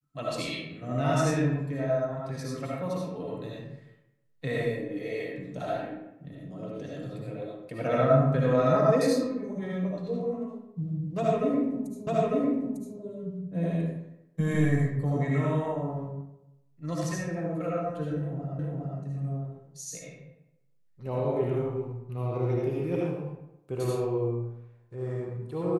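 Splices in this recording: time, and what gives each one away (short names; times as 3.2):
12.07 repeat of the last 0.9 s
18.59 repeat of the last 0.41 s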